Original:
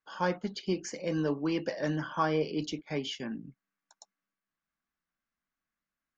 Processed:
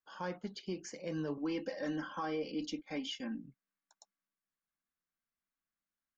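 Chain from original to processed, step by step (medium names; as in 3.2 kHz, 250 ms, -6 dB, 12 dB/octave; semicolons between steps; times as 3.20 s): 1.37–3.45 s: comb 3.8 ms, depth 90%; peak limiter -22 dBFS, peak gain reduction 8 dB; trim -7 dB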